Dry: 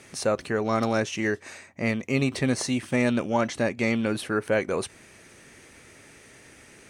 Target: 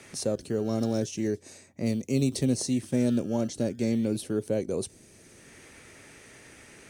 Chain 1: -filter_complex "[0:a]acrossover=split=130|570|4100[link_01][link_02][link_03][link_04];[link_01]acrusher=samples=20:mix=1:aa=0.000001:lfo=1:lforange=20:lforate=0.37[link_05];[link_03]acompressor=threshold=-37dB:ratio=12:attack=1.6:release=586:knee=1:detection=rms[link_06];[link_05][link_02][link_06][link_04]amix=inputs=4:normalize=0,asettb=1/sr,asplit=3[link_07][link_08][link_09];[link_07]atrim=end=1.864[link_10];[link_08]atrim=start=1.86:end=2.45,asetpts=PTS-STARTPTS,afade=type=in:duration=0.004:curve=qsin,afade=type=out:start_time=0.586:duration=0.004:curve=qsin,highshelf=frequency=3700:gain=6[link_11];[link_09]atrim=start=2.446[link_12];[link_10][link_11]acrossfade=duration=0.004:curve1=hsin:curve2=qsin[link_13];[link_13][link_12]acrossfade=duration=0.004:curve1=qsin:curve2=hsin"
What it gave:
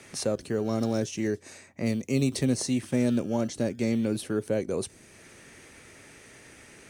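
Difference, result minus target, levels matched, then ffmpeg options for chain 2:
downward compressor: peak gain reduction −8.5 dB
-filter_complex "[0:a]acrossover=split=130|570|4100[link_01][link_02][link_03][link_04];[link_01]acrusher=samples=20:mix=1:aa=0.000001:lfo=1:lforange=20:lforate=0.37[link_05];[link_03]acompressor=threshold=-46.5dB:ratio=12:attack=1.6:release=586:knee=1:detection=rms[link_06];[link_05][link_02][link_06][link_04]amix=inputs=4:normalize=0,asettb=1/sr,asplit=3[link_07][link_08][link_09];[link_07]atrim=end=1.864[link_10];[link_08]atrim=start=1.86:end=2.45,asetpts=PTS-STARTPTS,afade=type=in:duration=0.004:curve=qsin,afade=type=out:start_time=0.586:duration=0.004:curve=qsin,highshelf=frequency=3700:gain=6[link_11];[link_09]atrim=start=2.446[link_12];[link_10][link_11]acrossfade=duration=0.004:curve1=hsin:curve2=qsin[link_13];[link_13][link_12]acrossfade=duration=0.004:curve1=qsin:curve2=hsin"

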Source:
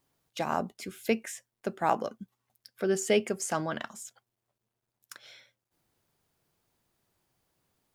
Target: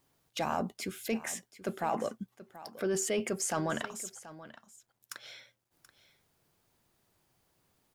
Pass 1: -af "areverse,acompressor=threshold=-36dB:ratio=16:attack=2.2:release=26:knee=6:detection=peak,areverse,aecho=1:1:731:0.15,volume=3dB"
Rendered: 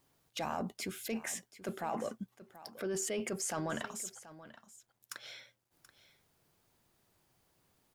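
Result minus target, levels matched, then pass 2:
downward compressor: peak gain reduction +5.5 dB
-af "areverse,acompressor=threshold=-30dB:ratio=16:attack=2.2:release=26:knee=6:detection=peak,areverse,aecho=1:1:731:0.15,volume=3dB"

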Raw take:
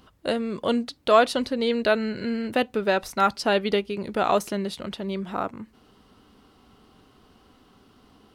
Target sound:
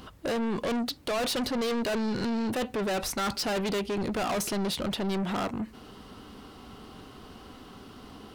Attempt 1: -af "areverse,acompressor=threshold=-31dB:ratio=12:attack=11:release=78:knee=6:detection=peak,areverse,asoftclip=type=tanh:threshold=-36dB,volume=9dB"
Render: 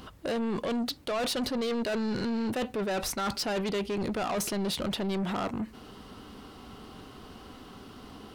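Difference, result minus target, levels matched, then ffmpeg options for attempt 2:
downward compressor: peak gain reduction +8 dB
-af "areverse,acompressor=threshold=-22.5dB:ratio=12:attack=11:release=78:knee=6:detection=peak,areverse,asoftclip=type=tanh:threshold=-36dB,volume=9dB"

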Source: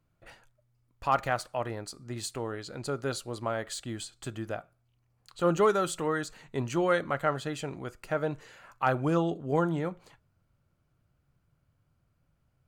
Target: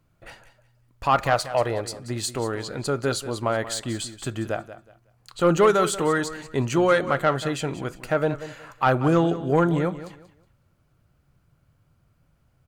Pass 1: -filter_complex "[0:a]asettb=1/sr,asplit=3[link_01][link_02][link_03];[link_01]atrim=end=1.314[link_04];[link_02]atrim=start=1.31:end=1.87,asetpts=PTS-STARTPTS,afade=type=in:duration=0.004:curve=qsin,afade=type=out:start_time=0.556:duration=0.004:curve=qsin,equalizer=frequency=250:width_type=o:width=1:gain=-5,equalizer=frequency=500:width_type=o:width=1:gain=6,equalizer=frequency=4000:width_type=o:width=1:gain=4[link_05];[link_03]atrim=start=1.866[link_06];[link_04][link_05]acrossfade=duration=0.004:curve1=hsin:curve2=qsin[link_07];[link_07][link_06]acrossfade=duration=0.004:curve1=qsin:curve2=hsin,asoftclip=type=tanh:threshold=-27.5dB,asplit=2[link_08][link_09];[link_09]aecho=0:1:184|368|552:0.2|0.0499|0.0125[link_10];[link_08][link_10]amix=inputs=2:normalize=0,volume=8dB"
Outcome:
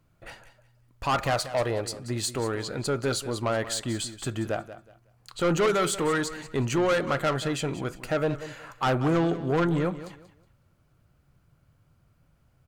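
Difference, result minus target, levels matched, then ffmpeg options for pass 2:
soft clipping: distortion +11 dB
-filter_complex "[0:a]asettb=1/sr,asplit=3[link_01][link_02][link_03];[link_01]atrim=end=1.314[link_04];[link_02]atrim=start=1.31:end=1.87,asetpts=PTS-STARTPTS,afade=type=in:duration=0.004:curve=qsin,afade=type=out:start_time=0.556:duration=0.004:curve=qsin,equalizer=frequency=250:width_type=o:width=1:gain=-5,equalizer=frequency=500:width_type=o:width=1:gain=6,equalizer=frequency=4000:width_type=o:width=1:gain=4[link_05];[link_03]atrim=start=1.866[link_06];[link_04][link_05]acrossfade=duration=0.004:curve1=hsin:curve2=qsin[link_07];[link_07][link_06]acrossfade=duration=0.004:curve1=qsin:curve2=hsin,asoftclip=type=tanh:threshold=-17dB,asplit=2[link_08][link_09];[link_09]aecho=0:1:184|368|552:0.2|0.0499|0.0125[link_10];[link_08][link_10]amix=inputs=2:normalize=0,volume=8dB"

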